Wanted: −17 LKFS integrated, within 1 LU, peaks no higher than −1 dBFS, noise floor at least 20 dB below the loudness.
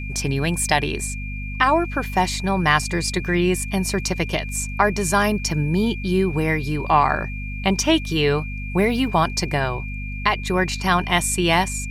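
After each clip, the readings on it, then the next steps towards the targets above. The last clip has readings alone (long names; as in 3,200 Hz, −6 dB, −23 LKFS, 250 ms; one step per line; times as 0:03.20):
mains hum 50 Hz; hum harmonics up to 250 Hz; level of the hum −27 dBFS; interfering tone 2,400 Hz; level of the tone −34 dBFS; integrated loudness −21.0 LKFS; sample peak −2.5 dBFS; target loudness −17.0 LKFS
→ mains-hum notches 50/100/150/200/250 Hz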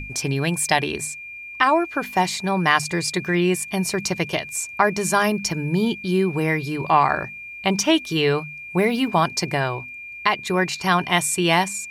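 mains hum none found; interfering tone 2,400 Hz; level of the tone −34 dBFS
→ notch filter 2,400 Hz, Q 30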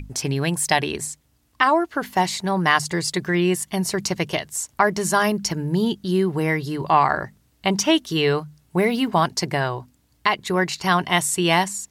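interfering tone none found; integrated loudness −21.5 LKFS; sample peak −3.0 dBFS; target loudness −17.0 LKFS
→ level +4.5 dB
brickwall limiter −1 dBFS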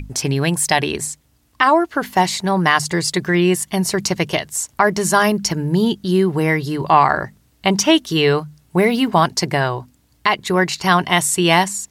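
integrated loudness −17.5 LKFS; sample peak −1.0 dBFS; background noise floor −58 dBFS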